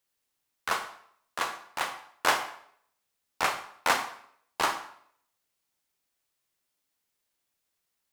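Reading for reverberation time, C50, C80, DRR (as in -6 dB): 0.65 s, 10.0 dB, 13.0 dB, 7.0 dB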